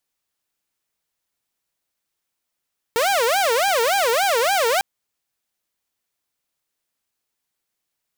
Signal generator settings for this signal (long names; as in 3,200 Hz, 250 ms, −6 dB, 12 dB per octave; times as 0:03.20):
siren wail 452–805 Hz 3.5 per second saw −14 dBFS 1.85 s